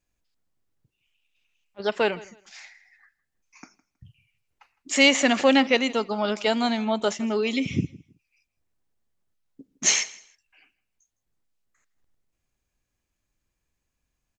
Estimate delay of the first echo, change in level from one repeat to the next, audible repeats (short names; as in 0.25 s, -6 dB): 0.16 s, -13.5 dB, 2